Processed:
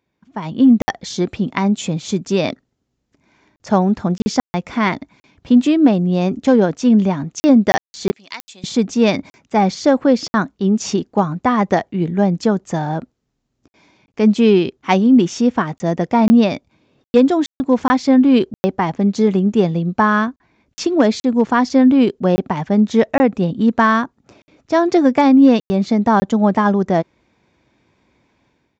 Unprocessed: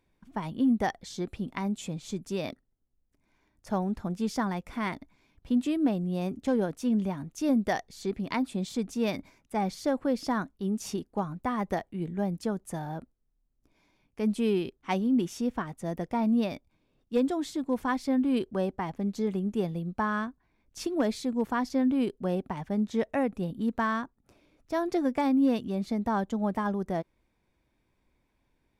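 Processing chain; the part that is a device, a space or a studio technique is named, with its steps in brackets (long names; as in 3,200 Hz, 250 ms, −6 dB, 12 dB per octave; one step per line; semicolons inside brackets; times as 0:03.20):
call with lost packets (high-pass filter 100 Hz 12 dB per octave; downsampling to 16,000 Hz; automatic gain control gain up to 14 dB; dropped packets of 20 ms bursts)
0:08.11–0:08.64: first difference
level +1.5 dB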